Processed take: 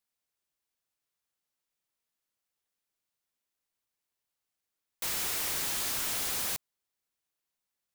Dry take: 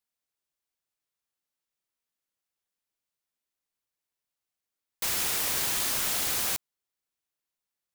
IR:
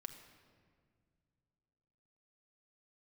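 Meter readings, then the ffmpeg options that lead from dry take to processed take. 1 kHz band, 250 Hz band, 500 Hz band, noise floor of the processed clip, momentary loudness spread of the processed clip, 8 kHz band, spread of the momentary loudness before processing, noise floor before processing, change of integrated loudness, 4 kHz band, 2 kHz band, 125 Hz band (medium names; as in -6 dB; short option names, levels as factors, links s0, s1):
-4.0 dB, -4.0 dB, -4.0 dB, under -85 dBFS, 5 LU, -4.0 dB, 5 LU, under -85 dBFS, -4.0 dB, -4.0 dB, -4.0 dB, -4.0 dB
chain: -af "volume=37.6,asoftclip=hard,volume=0.0266,volume=1.12"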